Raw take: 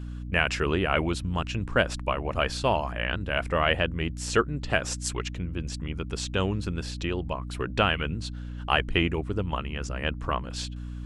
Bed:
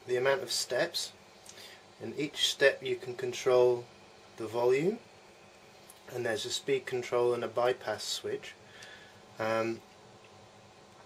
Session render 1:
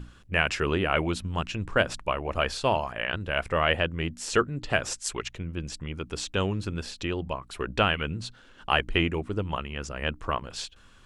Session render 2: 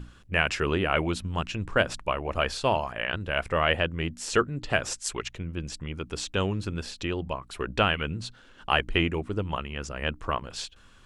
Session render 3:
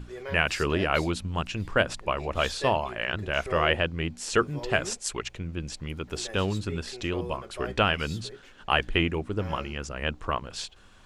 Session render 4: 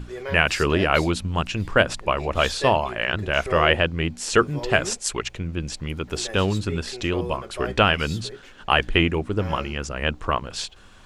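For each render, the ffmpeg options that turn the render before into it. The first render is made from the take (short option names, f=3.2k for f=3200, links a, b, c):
-af "bandreject=f=60:t=h:w=6,bandreject=f=120:t=h:w=6,bandreject=f=180:t=h:w=6,bandreject=f=240:t=h:w=6,bandreject=f=300:t=h:w=6"
-af anull
-filter_complex "[1:a]volume=-10dB[a];[0:a][a]amix=inputs=2:normalize=0"
-af "volume=5.5dB,alimiter=limit=-2dB:level=0:latency=1"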